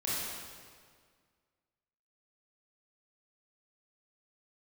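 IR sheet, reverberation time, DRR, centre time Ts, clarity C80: 1.9 s, −8.5 dB, 133 ms, −1.0 dB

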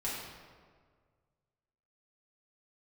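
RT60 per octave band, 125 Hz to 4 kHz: 2.3, 1.8, 1.9, 1.6, 1.3, 1.0 seconds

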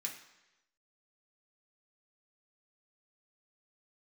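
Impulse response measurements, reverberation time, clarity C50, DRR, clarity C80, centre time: 1.0 s, 8.0 dB, −1.0 dB, 10.5 dB, 23 ms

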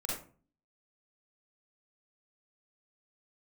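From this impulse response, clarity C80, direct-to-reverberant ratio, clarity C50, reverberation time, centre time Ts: 6.5 dB, −4.5 dB, 0.0 dB, 0.40 s, 50 ms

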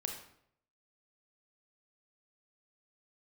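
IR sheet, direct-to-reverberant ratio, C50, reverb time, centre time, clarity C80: 2.5 dB, 5.5 dB, 0.70 s, 27 ms, 9.0 dB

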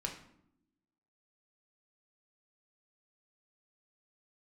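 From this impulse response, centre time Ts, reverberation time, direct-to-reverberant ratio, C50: 21 ms, 0.75 s, 1.0 dB, 8.0 dB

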